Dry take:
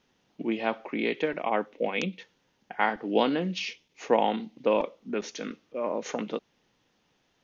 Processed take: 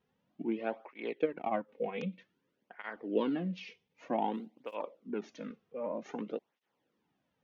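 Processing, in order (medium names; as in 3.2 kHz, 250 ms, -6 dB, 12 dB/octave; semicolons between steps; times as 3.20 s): 0.93–1.69 s: transient shaper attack +4 dB, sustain -9 dB; 2.19–3.36 s: peaking EQ 800 Hz -10 dB 0.33 oct; 4.32–4.75 s: modulation noise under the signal 31 dB; low-pass 1.3 kHz 6 dB/octave; cancelling through-zero flanger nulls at 0.53 Hz, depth 3.5 ms; trim -4 dB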